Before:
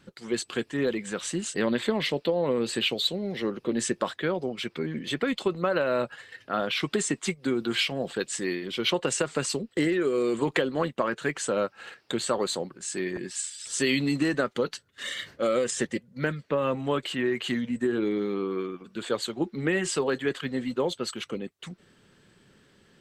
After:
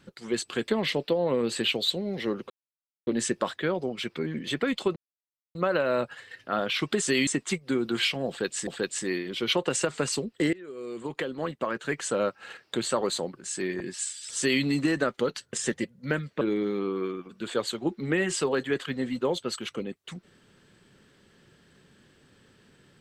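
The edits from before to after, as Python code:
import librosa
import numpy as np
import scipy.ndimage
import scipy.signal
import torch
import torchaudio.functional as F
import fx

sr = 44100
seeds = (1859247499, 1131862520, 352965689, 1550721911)

y = fx.edit(x, sr, fx.cut(start_s=0.68, length_s=1.17),
    fx.insert_silence(at_s=3.67, length_s=0.57),
    fx.insert_silence(at_s=5.56, length_s=0.59),
    fx.repeat(start_s=8.04, length_s=0.39, count=2),
    fx.fade_in_from(start_s=9.9, length_s=1.63, floor_db=-22.5),
    fx.duplicate(start_s=13.74, length_s=0.25, to_s=7.03),
    fx.cut(start_s=14.9, length_s=0.76),
    fx.cut(start_s=16.54, length_s=1.42), tone=tone)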